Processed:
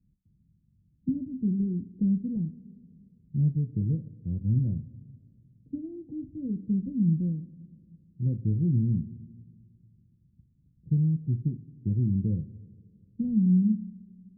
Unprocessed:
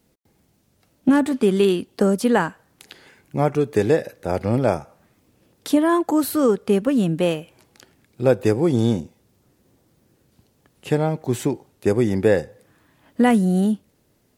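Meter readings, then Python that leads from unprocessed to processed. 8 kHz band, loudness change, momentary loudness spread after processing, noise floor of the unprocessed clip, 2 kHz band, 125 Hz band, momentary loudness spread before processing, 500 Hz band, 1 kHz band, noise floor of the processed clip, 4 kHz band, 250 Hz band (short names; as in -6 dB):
under -40 dB, -8.0 dB, 13 LU, -64 dBFS, under -40 dB, -0.5 dB, 8 LU, -29.0 dB, under -40 dB, -66 dBFS, under -40 dB, -7.5 dB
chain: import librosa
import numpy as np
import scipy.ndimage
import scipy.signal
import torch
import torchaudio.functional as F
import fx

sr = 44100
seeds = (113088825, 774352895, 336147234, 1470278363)

y = scipy.signal.sosfilt(scipy.signal.cheby2(4, 80, 1100.0, 'lowpass', fs=sr, output='sos'), x)
y = fx.rev_double_slope(y, sr, seeds[0], early_s=0.25, late_s=2.3, knee_db=-19, drr_db=5.0)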